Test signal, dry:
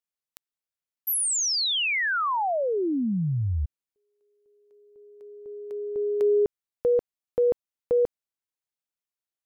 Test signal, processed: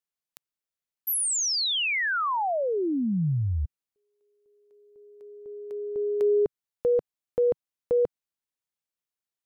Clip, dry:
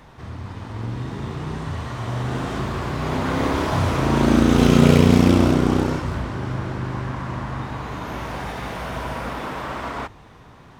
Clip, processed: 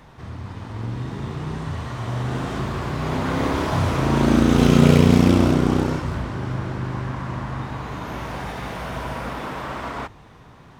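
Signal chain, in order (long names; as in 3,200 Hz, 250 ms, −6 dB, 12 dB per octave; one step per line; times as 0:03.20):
parametric band 150 Hz +2 dB 0.77 octaves
level −1 dB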